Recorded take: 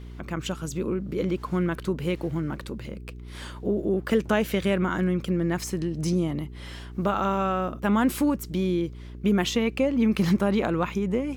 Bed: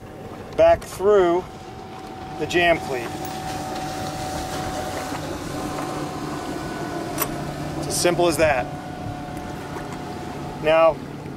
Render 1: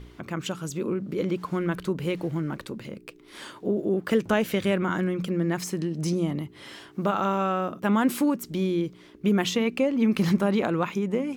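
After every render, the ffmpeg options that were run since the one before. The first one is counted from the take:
-af "bandreject=f=60:t=h:w=4,bandreject=f=120:t=h:w=4,bandreject=f=180:t=h:w=4,bandreject=f=240:t=h:w=4"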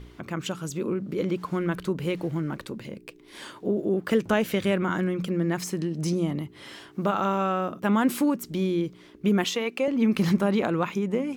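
-filter_complex "[0:a]asettb=1/sr,asplit=3[s0][s1][s2];[s0]atrim=end=2.814[s3];[s1]atrim=start=2.81:end=3.43,asetpts=PTS-STARTPTS,afade=t=in:d=0.004:c=qsin,afade=t=out:st=0.616:d=0.004:c=qsin,bandreject=f=1300:w=5.9[s4];[s2]atrim=start=3.426[s5];[s3][s4]acrossfade=d=0.004:c1=hsin:c2=qsin[s6];[s6][s5]acrossfade=d=0.004:c1=qsin:c2=hsin,asettb=1/sr,asplit=3[s7][s8][s9];[s7]atrim=end=9.444[s10];[s8]atrim=start=9.44:end=9.88,asetpts=PTS-STARTPTS,afade=t=in:d=0.004:c=qsin,afade=t=out:st=0.436:d=0.004:c=qsin,highpass=370[s11];[s9]atrim=start=9.876[s12];[s10][s11]acrossfade=d=0.004:c1=hsin:c2=qsin[s13];[s13][s12]acrossfade=d=0.004:c1=qsin:c2=hsin"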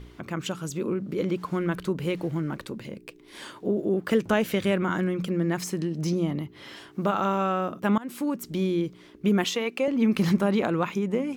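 -filter_complex "[0:a]asettb=1/sr,asplit=3[s0][s1][s2];[s0]atrim=end=5.994[s3];[s1]atrim=start=5.99:end=6.77,asetpts=PTS-STARTPTS,afade=t=in:d=0.004:c=qsin,afade=t=out:st=0.776:d=0.004:c=qsin,equalizer=f=8800:w=2.2:g=-9[s4];[s2]atrim=start=6.766[s5];[s3][s4]acrossfade=d=0.004:c1=hsin:c2=qsin[s6];[s6][s5]acrossfade=d=0.004:c1=qsin:c2=hsin,asplit=2[s7][s8];[s7]atrim=end=7.98,asetpts=PTS-STARTPTS,afade=t=out:st=7.976:d=0.004:c=hsin:silence=0.0630957[s9];[s8]atrim=start=7.98,asetpts=PTS-STARTPTS,afade=t=in:d=0.51:silence=0.0630957[s10];[s9][s10]concat=n=2:v=0:a=1"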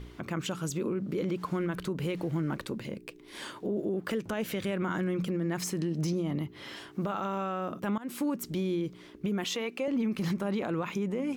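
-af "acompressor=threshold=0.0562:ratio=6,alimiter=limit=0.0668:level=0:latency=1:release=23"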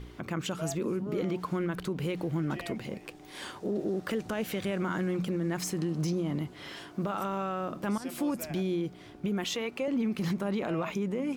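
-filter_complex "[1:a]volume=0.0531[s0];[0:a][s0]amix=inputs=2:normalize=0"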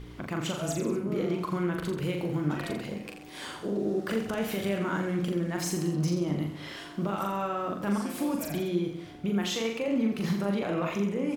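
-af "aecho=1:1:40|84|132.4|185.6|244.2:0.631|0.398|0.251|0.158|0.1"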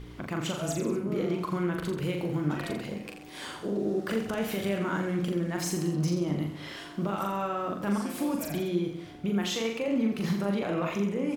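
-af anull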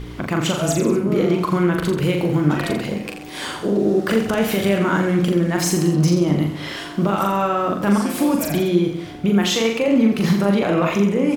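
-af "volume=3.76"

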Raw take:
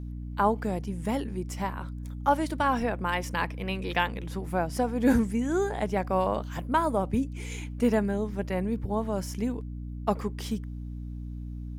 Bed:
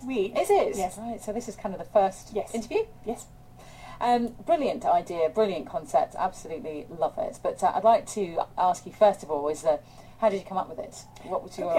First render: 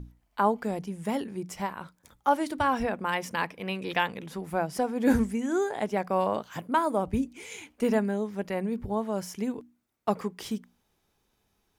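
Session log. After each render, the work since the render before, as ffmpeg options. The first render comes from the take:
-af "bandreject=f=60:t=h:w=6,bandreject=f=120:t=h:w=6,bandreject=f=180:t=h:w=6,bandreject=f=240:t=h:w=6,bandreject=f=300:t=h:w=6"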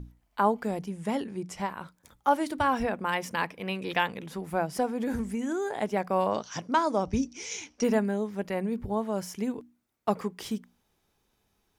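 -filter_complex "[0:a]asettb=1/sr,asplit=3[s0][s1][s2];[s0]atrim=end=0.914[s3];[s1]atrim=start=0.91:end=1.7,asetpts=PTS-STARTPTS,afade=t=in:d=0.004:c=qsin,afade=t=out:st=0.786:d=0.004:c=qsin,lowpass=9900[s4];[s2]atrim=start=1.696[s5];[s3][s4]acrossfade=d=0.004:c1=hsin:c2=qsin[s6];[s6][s5]acrossfade=d=0.004:c1=qsin:c2=hsin,asettb=1/sr,asplit=3[s7][s8][s9];[s7]atrim=end=4.874[s10];[s8]atrim=start=4.87:end=5.68,asetpts=PTS-STARTPTS,afade=t=in:d=0.004:c=qsin,afade=t=out:st=0.806:d=0.004:c=qsin,acompressor=threshold=0.0501:ratio=12:attack=3.2:release=140:knee=1:detection=peak[s11];[s9]atrim=start=5.676[s12];[s10][s11]acrossfade=d=0.004:c1=hsin:c2=qsin[s13];[s13][s12]acrossfade=d=0.004:c1=qsin:c2=hsin,asettb=1/sr,asplit=3[s14][s15][s16];[s14]atrim=end=6.314[s17];[s15]atrim=start=6.31:end=7.84,asetpts=PTS-STARTPTS,afade=t=in:d=0.004:c=qsin,afade=t=out:st=1.526:d=0.004:c=qsin,lowpass=f=5700:t=q:w=13[s18];[s16]atrim=start=7.836[s19];[s17][s18]acrossfade=d=0.004:c1=hsin:c2=qsin[s20];[s20][s19]acrossfade=d=0.004:c1=qsin:c2=hsin"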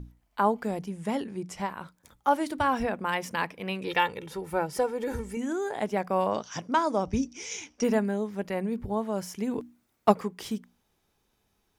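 -filter_complex "[0:a]asettb=1/sr,asplit=3[s0][s1][s2];[s0]atrim=end=3.874[s3];[s1]atrim=start=3.87:end=5.37,asetpts=PTS-STARTPTS,afade=t=in:d=0.004:c=qsin,afade=t=out:st=1.496:d=0.004:c=qsin,aecho=1:1:2.2:0.62,atrim=end_sample=66150[s4];[s2]atrim=start=5.366[s5];[s3][s4]acrossfade=d=0.004:c1=hsin:c2=qsin[s6];[s6][s5]acrossfade=d=0.004:c1=qsin:c2=hsin,asettb=1/sr,asplit=3[s7][s8][s9];[s7]atrim=end=6.054[s10];[s8]atrim=start=6.05:end=7.88,asetpts=PTS-STARTPTS,afade=t=in:d=0.004:c=qsin,afade=t=out:st=1.826:d=0.004:c=qsin,bandreject=f=4200:w=12[s11];[s9]atrim=start=7.876[s12];[s10][s11]acrossfade=d=0.004:c1=hsin:c2=qsin[s13];[s13][s12]acrossfade=d=0.004:c1=qsin:c2=hsin,asplit=3[s14][s15][s16];[s14]afade=t=out:st=9.51:d=0.02[s17];[s15]acontrast=86,afade=t=in:st=9.51:d=0.02,afade=t=out:st=10.11:d=0.02[s18];[s16]afade=t=in:st=10.11:d=0.02[s19];[s17][s18][s19]amix=inputs=3:normalize=0"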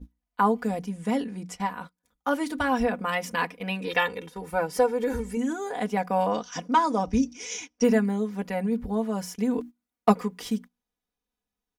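-af "agate=range=0.126:threshold=0.00891:ratio=16:detection=peak,aecho=1:1:4.1:0.84"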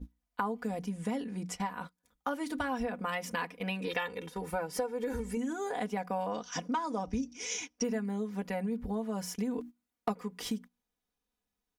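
-af "acompressor=threshold=0.0251:ratio=4"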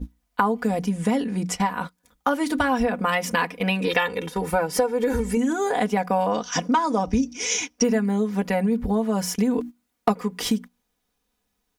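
-af "volume=3.98"

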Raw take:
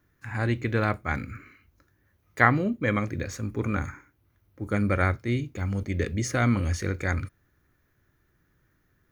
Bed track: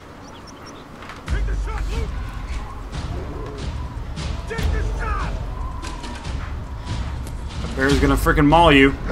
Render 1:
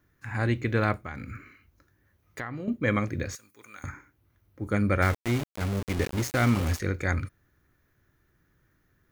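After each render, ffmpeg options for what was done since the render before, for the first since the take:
-filter_complex "[0:a]asettb=1/sr,asplit=3[s0][s1][s2];[s0]atrim=end=0.954[s3];[s1]atrim=start=0.95:end=2.68,asetpts=PTS-STARTPTS,afade=t=in:d=0.004:c=qsin,afade=t=out:st=1.726:d=0.004:c=qsin,acompressor=threshold=0.0224:ratio=5:attack=3.2:release=140:knee=1:detection=peak[s4];[s2]atrim=start=2.676[s5];[s3][s4]acrossfade=d=0.004:c1=hsin:c2=qsin[s6];[s6][s5]acrossfade=d=0.004:c1=qsin:c2=hsin,asettb=1/sr,asplit=3[s7][s8][s9];[s7]atrim=end=3.354[s10];[s8]atrim=start=3.35:end=3.84,asetpts=PTS-STARTPTS,afade=t=in:d=0.004:c=qsin,afade=t=out:st=0.486:d=0.004:c=qsin,aderivative[s11];[s9]atrim=start=3.836[s12];[s10][s11]acrossfade=d=0.004:c1=hsin:c2=qsin[s13];[s13][s12]acrossfade=d=0.004:c1=qsin:c2=hsin,asettb=1/sr,asplit=3[s14][s15][s16];[s14]atrim=end=5.024[s17];[s15]atrim=start=5.02:end=6.8,asetpts=PTS-STARTPTS,afade=t=in:d=0.004:c=qsin,afade=t=out:st=1.776:d=0.004:c=qsin,aeval=exprs='val(0)*gte(abs(val(0)),0.0355)':c=same[s18];[s16]atrim=start=6.796[s19];[s17][s18]acrossfade=d=0.004:c1=hsin:c2=qsin[s20];[s20][s19]acrossfade=d=0.004:c1=qsin:c2=hsin"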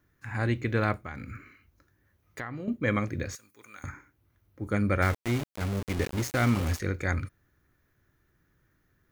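-af "volume=0.841"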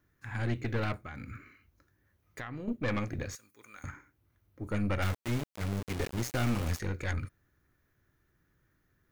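-af "aeval=exprs='(tanh(15.8*val(0)+0.6)-tanh(0.6))/15.8':c=same"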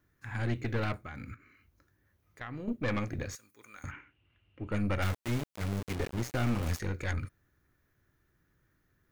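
-filter_complex "[0:a]asettb=1/sr,asplit=3[s0][s1][s2];[s0]atrim=end=1.344[s3];[s1]atrim=start=1.34:end=2.41,asetpts=PTS-STARTPTS,afade=t=in:d=0.004:c=qsin,afade=t=out:st=1.066:d=0.004:c=qsin,acompressor=threshold=0.00112:ratio=2.5:attack=3.2:release=140:knee=1:detection=peak[s4];[s2]atrim=start=2.406[s5];[s3][s4]acrossfade=d=0.004:c1=hsin:c2=qsin[s6];[s6][s5]acrossfade=d=0.004:c1=qsin:c2=hsin,asettb=1/sr,asplit=3[s7][s8][s9];[s7]atrim=end=3.914[s10];[s8]atrim=start=3.91:end=4.72,asetpts=PTS-STARTPTS,afade=t=in:d=0.004:c=qsin,afade=t=out:st=0.806:d=0.004:c=qsin,lowpass=f=2800:t=q:w=15[s11];[s9]atrim=start=4.716[s12];[s10][s11]acrossfade=d=0.004:c1=hsin:c2=qsin[s13];[s13][s12]acrossfade=d=0.004:c1=qsin:c2=hsin,asettb=1/sr,asplit=3[s14][s15][s16];[s14]atrim=end=5.954[s17];[s15]atrim=start=5.95:end=6.63,asetpts=PTS-STARTPTS,afade=t=in:d=0.004:c=qsin,afade=t=out:st=0.676:d=0.004:c=qsin,highshelf=f=3500:g=-6[s18];[s16]atrim=start=6.626[s19];[s17][s18]acrossfade=d=0.004:c1=hsin:c2=qsin[s20];[s20][s19]acrossfade=d=0.004:c1=qsin:c2=hsin"

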